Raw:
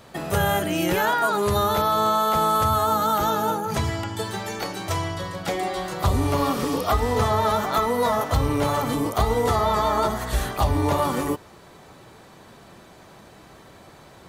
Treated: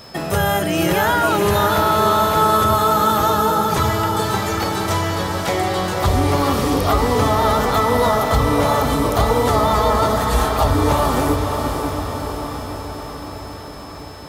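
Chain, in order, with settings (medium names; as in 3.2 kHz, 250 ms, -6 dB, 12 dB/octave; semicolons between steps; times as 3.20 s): in parallel at -0.5 dB: peak limiter -18 dBFS, peak gain reduction 9 dB; on the sum: whistle 5.2 kHz -42 dBFS; on a send: echo that smears into a reverb 566 ms, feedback 64%, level -5 dB; on the sum: crackle 110 per s -37 dBFS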